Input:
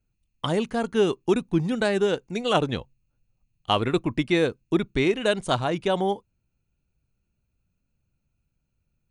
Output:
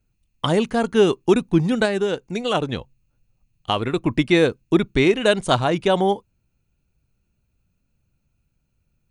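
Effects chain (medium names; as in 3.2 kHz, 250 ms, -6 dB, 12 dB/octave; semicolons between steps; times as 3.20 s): 1.85–4.03 s: compression 1.5:1, threshold -32 dBFS, peak gain reduction 6 dB; trim +5.5 dB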